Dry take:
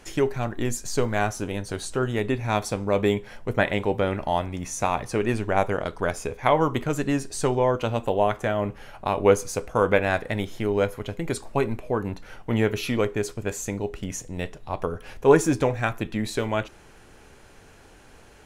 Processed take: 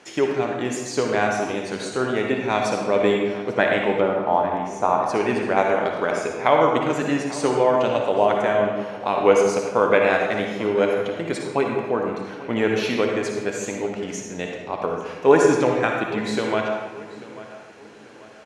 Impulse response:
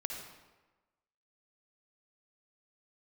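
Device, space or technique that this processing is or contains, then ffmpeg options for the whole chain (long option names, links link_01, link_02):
supermarket ceiling speaker: -filter_complex "[0:a]asettb=1/sr,asplit=3[link_01][link_02][link_03];[link_01]atrim=end=4.014[link_04];[link_02]atrim=start=4.01:end=5.03,asetpts=PTS-STARTPTS,afade=type=in:duration=0.004:curve=qsin,afade=type=out:start_time=1.016:duration=0.004:curve=qsin,highshelf=frequency=1600:width_type=q:width=1.5:gain=-10.5[link_05];[link_03]atrim=start=5.026[link_06];[link_04][link_05]acrossfade=duration=0.004:curve1=hsin:curve2=qsin[link_07];[link_07][link_06]acrossfade=duration=0.004:curve1=qsin:curve2=hsin,highpass=220,lowpass=6500,asplit=2[link_08][link_09];[link_09]adelay=840,lowpass=frequency=3900:poles=1,volume=-17dB,asplit=2[link_10][link_11];[link_11]adelay=840,lowpass=frequency=3900:poles=1,volume=0.4,asplit=2[link_12][link_13];[link_13]adelay=840,lowpass=frequency=3900:poles=1,volume=0.4[link_14];[link_08][link_10][link_12][link_14]amix=inputs=4:normalize=0[link_15];[1:a]atrim=start_sample=2205[link_16];[link_15][link_16]afir=irnorm=-1:irlink=0,volume=4dB"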